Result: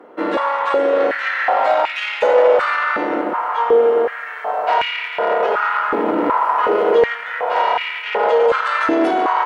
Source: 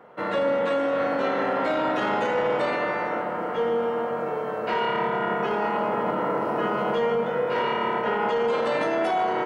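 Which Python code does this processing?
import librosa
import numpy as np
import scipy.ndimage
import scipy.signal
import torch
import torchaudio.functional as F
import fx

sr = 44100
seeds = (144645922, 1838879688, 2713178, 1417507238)

y = fx.cheby_harmonics(x, sr, harmonics=(4,), levels_db=(-18,), full_scale_db=-13.0)
y = fx.filter_held_highpass(y, sr, hz=2.7, low_hz=300.0, high_hz=2400.0)
y = y * librosa.db_to_amplitude(3.5)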